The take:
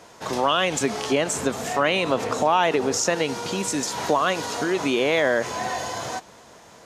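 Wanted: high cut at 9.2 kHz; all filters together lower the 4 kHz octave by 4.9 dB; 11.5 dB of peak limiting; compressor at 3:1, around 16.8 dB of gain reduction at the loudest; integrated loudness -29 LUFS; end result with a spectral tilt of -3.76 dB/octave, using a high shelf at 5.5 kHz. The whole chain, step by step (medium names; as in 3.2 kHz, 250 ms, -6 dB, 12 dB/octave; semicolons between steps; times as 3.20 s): low-pass 9.2 kHz; peaking EQ 4 kHz -4 dB; treble shelf 5.5 kHz -7.5 dB; compression 3:1, threshold -40 dBFS; trim +14 dB; peak limiter -19.5 dBFS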